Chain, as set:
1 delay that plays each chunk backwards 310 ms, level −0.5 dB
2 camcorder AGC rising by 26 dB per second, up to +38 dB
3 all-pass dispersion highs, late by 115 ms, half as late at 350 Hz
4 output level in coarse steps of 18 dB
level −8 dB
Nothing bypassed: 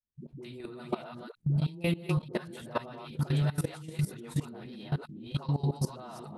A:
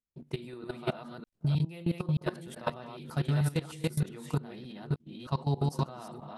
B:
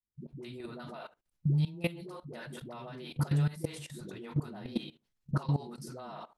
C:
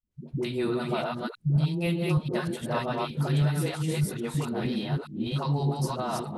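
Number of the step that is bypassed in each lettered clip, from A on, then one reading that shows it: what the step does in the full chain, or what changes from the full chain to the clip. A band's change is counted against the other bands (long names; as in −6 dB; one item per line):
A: 3, 1 kHz band +2.0 dB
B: 1, 8 kHz band −1.5 dB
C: 4, change in crest factor −3.0 dB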